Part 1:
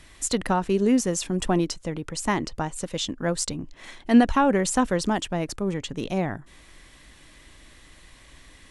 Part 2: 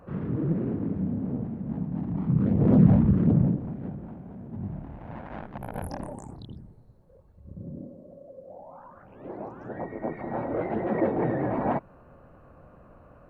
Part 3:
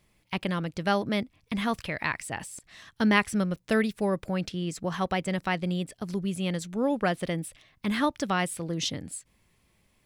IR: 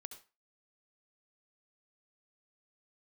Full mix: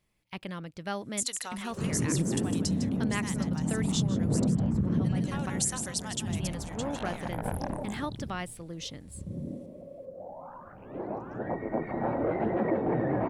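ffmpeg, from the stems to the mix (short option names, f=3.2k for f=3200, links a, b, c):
-filter_complex "[0:a]agate=range=-18dB:threshold=-38dB:ratio=16:detection=peak,aderivative,adelay=950,volume=2dB,asplit=2[a][b];[b]volume=-10.5dB[c];[1:a]adelay=1700,volume=2dB[d];[2:a]volume=-9dB,asplit=3[e][f][g];[e]atrim=end=5.5,asetpts=PTS-STARTPTS,afade=t=out:st=5.496:d=0.004:c=hsin[h];[f]atrim=start=5.5:end=6.3,asetpts=PTS-STARTPTS,volume=0[i];[g]atrim=start=6.3,asetpts=PTS-STARTPTS,afade=t=in:d=0.004:c=hsin[j];[h][i][j]concat=n=3:v=0:a=1,asplit=2[k][l];[l]apad=whole_len=425980[m];[a][m]sidechaincompress=threshold=-37dB:ratio=8:attack=16:release=144[n];[c]aecho=0:1:155:1[o];[n][d][k][o]amix=inputs=4:normalize=0,acompressor=threshold=-24dB:ratio=6"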